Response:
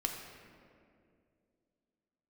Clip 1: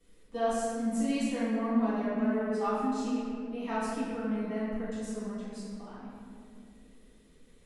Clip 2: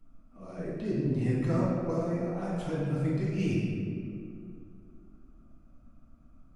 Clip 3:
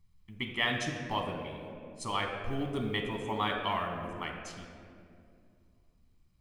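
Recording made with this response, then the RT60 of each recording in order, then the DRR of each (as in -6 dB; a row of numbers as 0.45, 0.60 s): 3; 2.4, 2.4, 2.4 s; -13.5, -8.0, 1.5 dB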